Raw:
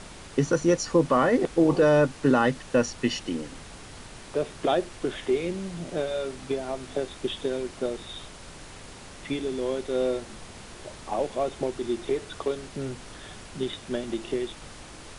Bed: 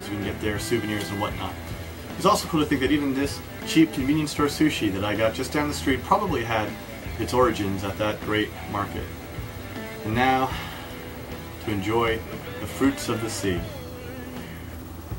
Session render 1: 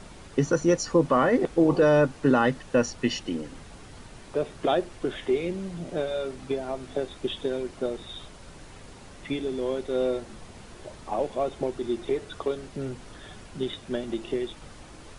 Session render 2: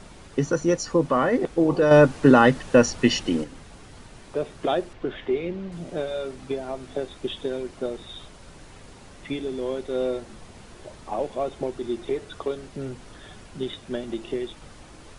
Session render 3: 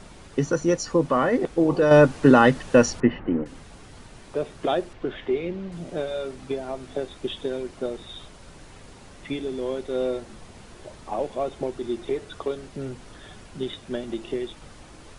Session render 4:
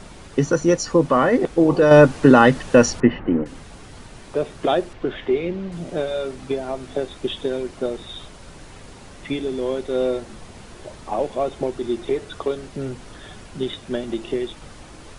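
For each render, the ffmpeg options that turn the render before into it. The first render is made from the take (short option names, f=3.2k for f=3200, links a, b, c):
-af "afftdn=nr=6:nf=-45"
-filter_complex "[0:a]asettb=1/sr,asplit=3[a][b][c];[a]atrim=end=4.934[d];[b]atrim=start=4.93:end=5.72,asetpts=PTS-STARTPTS,afade=t=in:d=0.004:c=qsin,afade=t=out:st=0.786:d=0.004:c=qsin,lowpass=3.5k[e];[c]atrim=start=5.716[f];[d][e]acrossfade=d=0.004:c1=hsin:c2=qsin[g];[g][f]acrossfade=d=0.004:c1=qsin:c2=hsin,asplit=3[h][i][j];[h]atrim=end=1.912[k];[i]atrim=start=1.908:end=3.442,asetpts=PTS-STARTPTS,volume=6.5dB[l];[j]atrim=start=3.438[m];[k][l]acrossfade=d=0.004:c1=hsin:c2=hsin[n];[n][m]acrossfade=d=0.004:c1=hsin:c2=hsin"
-filter_complex "[0:a]asettb=1/sr,asplit=3[a][b][c];[a]atrim=end=3.004[d];[b]atrim=start=3:end=3.46,asetpts=PTS-STARTPTS,afade=t=in:d=0.004:c=qsin,afade=t=out:st=0.456:d=0.004:c=qsin,lowpass=f=1.8k:w=0.5412,lowpass=f=1.8k:w=1.3066[e];[c]atrim=start=3.456[f];[d][e]acrossfade=d=0.004:c1=hsin:c2=qsin[g];[g][f]acrossfade=d=0.004:c1=qsin:c2=hsin"
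-af "volume=4.5dB,alimiter=limit=-2dB:level=0:latency=1"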